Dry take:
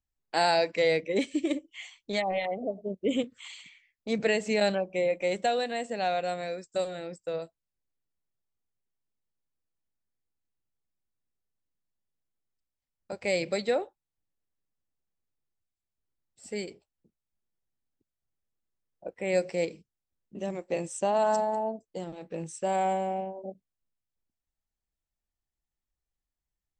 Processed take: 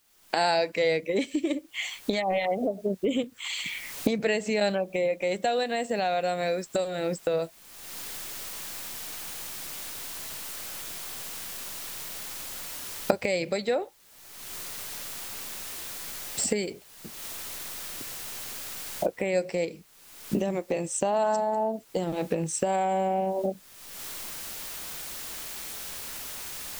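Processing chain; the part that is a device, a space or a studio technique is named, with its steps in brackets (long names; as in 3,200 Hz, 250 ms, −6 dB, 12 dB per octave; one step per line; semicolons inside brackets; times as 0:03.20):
cheap recorder with automatic gain (white noise bed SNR 35 dB; camcorder AGC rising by 39 dB per second)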